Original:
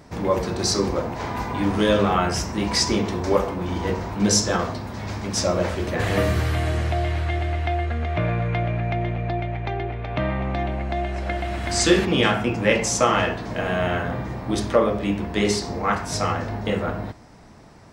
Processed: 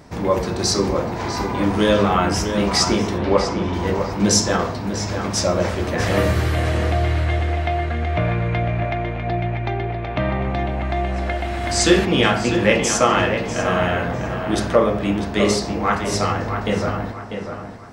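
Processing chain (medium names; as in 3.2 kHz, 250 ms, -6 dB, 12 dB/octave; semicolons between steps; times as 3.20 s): 3.18–3.74 s: steep low-pass 4.3 kHz; tape echo 647 ms, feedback 38%, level -6.5 dB, low-pass 3.3 kHz; trim +2.5 dB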